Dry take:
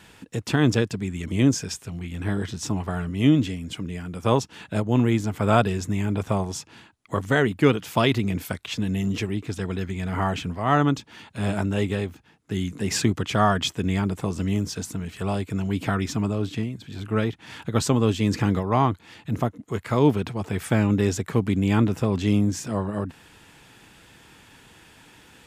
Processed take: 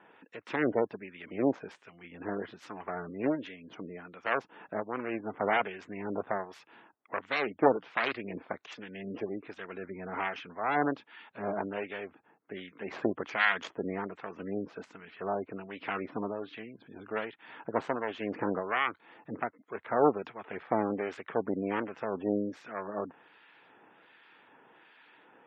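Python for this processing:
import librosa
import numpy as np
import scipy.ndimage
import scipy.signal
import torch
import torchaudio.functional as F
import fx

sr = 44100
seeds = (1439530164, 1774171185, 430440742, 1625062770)

y = fx.self_delay(x, sr, depth_ms=0.79)
y = scipy.signal.sosfilt(scipy.signal.butter(2, 410.0, 'highpass', fs=sr, output='sos'), y)
y = fx.harmonic_tremolo(y, sr, hz=1.3, depth_pct=70, crossover_hz=1300.0)
y = scipy.signal.sosfilt(scipy.signal.butter(2, 2100.0, 'lowpass', fs=sr, output='sos'), y)
y = fx.spec_gate(y, sr, threshold_db=-25, keep='strong')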